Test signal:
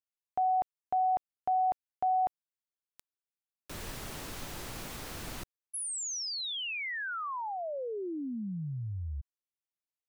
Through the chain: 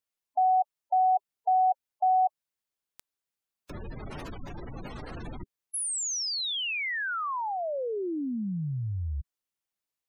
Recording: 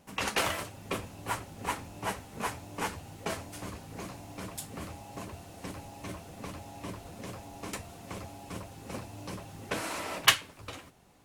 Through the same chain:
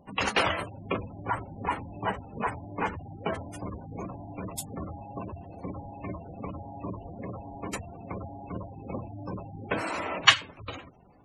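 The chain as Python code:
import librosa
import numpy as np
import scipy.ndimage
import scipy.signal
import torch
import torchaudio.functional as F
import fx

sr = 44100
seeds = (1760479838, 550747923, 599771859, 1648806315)

y = fx.spec_gate(x, sr, threshold_db=-15, keep='strong')
y = F.gain(torch.from_numpy(y), 5.0).numpy()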